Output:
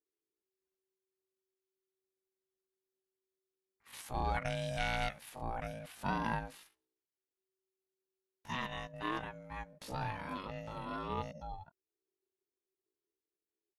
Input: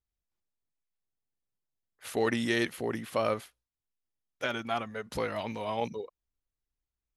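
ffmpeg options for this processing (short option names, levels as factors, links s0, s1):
-af "atempo=0.52,aeval=exprs='val(0)*sin(2*PI*380*n/s)':c=same,volume=0.631"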